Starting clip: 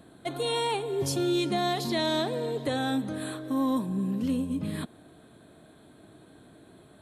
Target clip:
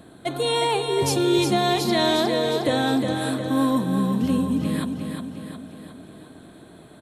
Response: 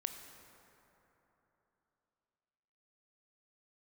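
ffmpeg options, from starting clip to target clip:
-af "aecho=1:1:359|718|1077|1436|1795|2154|2513:0.501|0.271|0.146|0.0789|0.0426|0.023|0.0124,volume=6dB"

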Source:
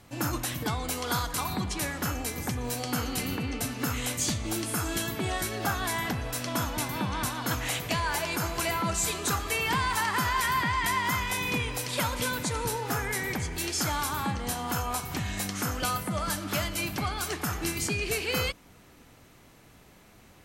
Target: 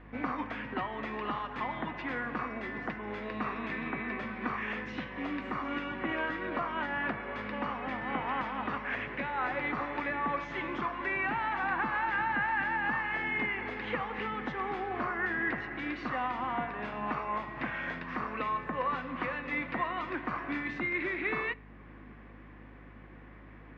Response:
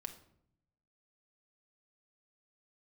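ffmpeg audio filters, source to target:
-filter_complex "[0:a]acrossover=split=470[a][b];[a]acompressor=threshold=-43dB:ratio=6[c];[b]alimiter=level_in=0.5dB:limit=-24dB:level=0:latency=1:release=303,volume=-0.5dB[d];[c][d]amix=inputs=2:normalize=0,highpass=f=200:w=0.5412,highpass=f=200:w=1.3066,equalizer=f=210:t=q:w=4:g=-9,equalizer=f=470:t=q:w=4:g=-7,equalizer=f=720:t=q:w=4:g=-10,equalizer=f=1k:t=q:w=4:g=-7,equalizer=f=1.6k:t=q:w=4:g=-7,lowpass=f=2.3k:w=0.5412,lowpass=f=2.3k:w=1.3066,asplit=2[e][f];[1:a]atrim=start_sample=2205[g];[f][g]afir=irnorm=-1:irlink=0,volume=-9.5dB[h];[e][h]amix=inputs=2:normalize=0,acontrast=84,aeval=exprs='val(0)+0.00251*(sin(2*PI*60*n/s)+sin(2*PI*2*60*n/s)/2+sin(2*PI*3*60*n/s)/3+sin(2*PI*4*60*n/s)/4+sin(2*PI*5*60*n/s)/5)':c=same,asetrate=37926,aresample=44100"

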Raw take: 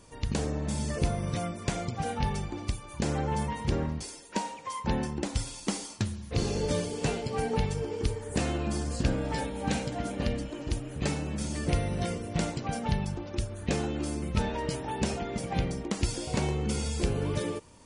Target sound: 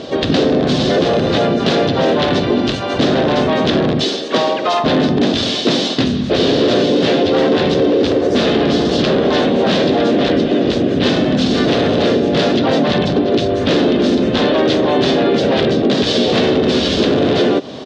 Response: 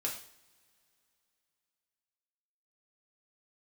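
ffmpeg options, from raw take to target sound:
-filter_complex "[0:a]asplit=4[a][b][c][d];[b]asetrate=29433,aresample=44100,atempo=1.49831,volume=0dB[e];[c]asetrate=37084,aresample=44100,atempo=1.18921,volume=-1dB[f];[d]asetrate=52444,aresample=44100,atempo=0.840896,volume=-2dB[g];[a][e][f][g]amix=inputs=4:normalize=0,asplit=2[h][i];[i]aeval=exprs='(mod(8.41*val(0)+1,2)-1)/8.41':c=same,volume=-6dB[j];[h][j]amix=inputs=2:normalize=0,equalizer=f=600:t=o:w=1:g=5,apsyclip=22.5dB,highpass=180,equalizer=f=260:t=q:w=4:g=6,equalizer=f=390:t=q:w=4:g=4,equalizer=f=910:t=q:w=4:g=-9,equalizer=f=1.3k:t=q:w=4:g=-4,equalizer=f=2.2k:t=q:w=4:g=-6,equalizer=f=3.6k:t=q:w=4:g=6,lowpass=f=4.5k:w=0.5412,lowpass=f=4.5k:w=1.3066,acompressor=threshold=-8dB:ratio=2.5,volume=-4.5dB"

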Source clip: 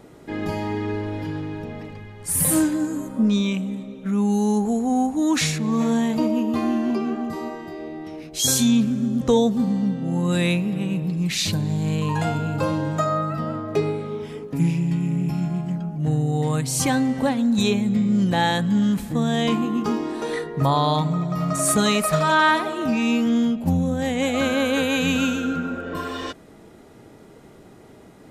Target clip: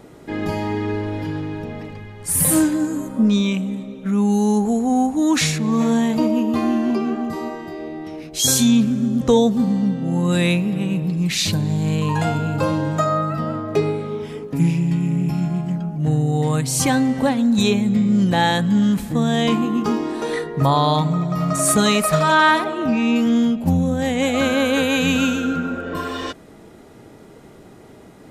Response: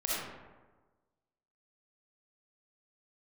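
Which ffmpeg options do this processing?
-filter_complex "[0:a]asettb=1/sr,asplit=3[a][b][c];[a]atrim=end=22.644[d];[b]atrim=start=22.64:end=23.16,asetpts=PTS-STARTPTS,afade=t=in:d=0.004:c=qsin,afade=t=out:st=0.516:d=0.004:c=qsin,highshelf=f=5k:g=-12[e];[c]atrim=start=23.156[f];[d][e]acrossfade=d=0.004:c1=hsin:c2=qsin[g];[g][f]acrossfade=d=0.004:c1=qsin:c2=hsin,volume=3dB"

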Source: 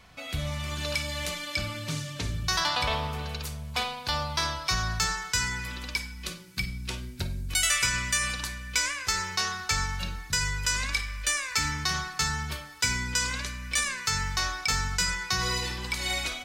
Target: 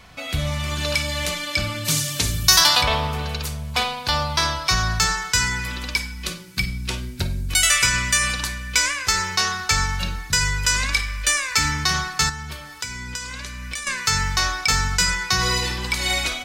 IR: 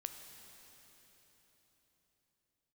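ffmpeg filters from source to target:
-filter_complex "[0:a]asplit=3[a][b][c];[a]afade=t=out:st=1.84:d=0.02[d];[b]aemphasis=mode=production:type=75fm,afade=t=in:st=1.84:d=0.02,afade=t=out:st=2.8:d=0.02[e];[c]afade=t=in:st=2.8:d=0.02[f];[d][e][f]amix=inputs=3:normalize=0,asettb=1/sr,asplit=3[g][h][i];[g]atrim=end=12.294[j];[h]atrim=start=12.29:end=13.87,asetpts=PTS-STARTPTS,afade=t=in:d=0.004:c=qsin,afade=t=out:st=1.576:d=0.004:c=qsin,acompressor=threshold=-37dB:ratio=5[k];[i]atrim=start=13.866[l];[j][k]acrossfade=d=0.004:c1=hsin:c2=qsin[m];[m][l]acrossfade=d=0.004:c1=qsin:c2=hsin,volume=7.5dB"

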